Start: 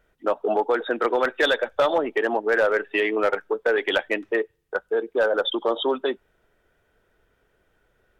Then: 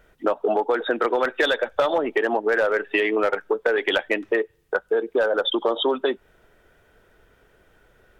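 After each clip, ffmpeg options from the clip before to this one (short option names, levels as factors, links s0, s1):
-af "acompressor=threshold=0.0355:ratio=3,volume=2.66"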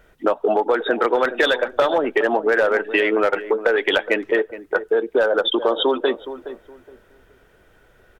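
-filter_complex "[0:a]asplit=2[s0][s1];[s1]adelay=418,lowpass=f=1100:p=1,volume=0.251,asplit=2[s2][s3];[s3]adelay=418,lowpass=f=1100:p=1,volume=0.25,asplit=2[s4][s5];[s5]adelay=418,lowpass=f=1100:p=1,volume=0.25[s6];[s0][s2][s4][s6]amix=inputs=4:normalize=0,volume=1.41"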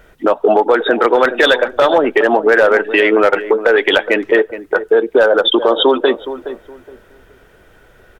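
-af "alimiter=level_in=2.66:limit=0.891:release=50:level=0:latency=1,volume=0.891"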